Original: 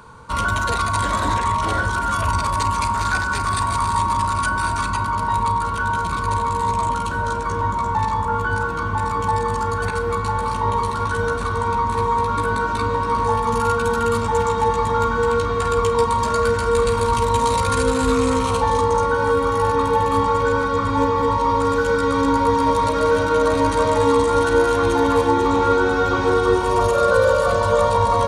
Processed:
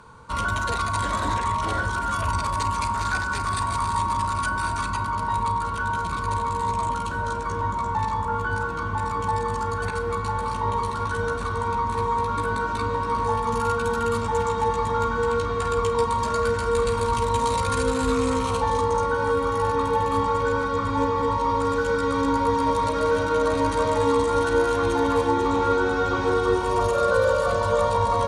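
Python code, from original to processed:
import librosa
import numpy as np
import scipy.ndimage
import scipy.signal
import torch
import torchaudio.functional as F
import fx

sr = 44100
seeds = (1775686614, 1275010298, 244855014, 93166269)

y = scipy.signal.sosfilt(scipy.signal.butter(2, 12000.0, 'lowpass', fs=sr, output='sos'), x)
y = F.gain(torch.from_numpy(y), -4.5).numpy()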